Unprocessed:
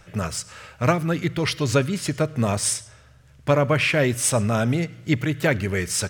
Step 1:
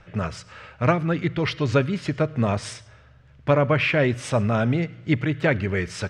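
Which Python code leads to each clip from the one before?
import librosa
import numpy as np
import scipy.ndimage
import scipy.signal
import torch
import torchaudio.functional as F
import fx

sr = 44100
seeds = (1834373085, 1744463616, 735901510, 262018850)

y = scipy.signal.sosfilt(scipy.signal.butter(2, 3300.0, 'lowpass', fs=sr, output='sos'), x)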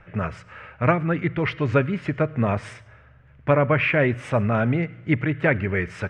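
y = fx.high_shelf_res(x, sr, hz=3100.0, db=-11.0, q=1.5)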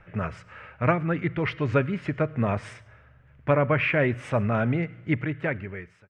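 y = fx.fade_out_tail(x, sr, length_s=1.07)
y = F.gain(torch.from_numpy(y), -3.0).numpy()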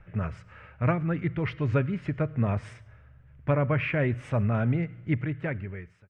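y = fx.low_shelf(x, sr, hz=170.0, db=11.0)
y = F.gain(torch.from_numpy(y), -6.0).numpy()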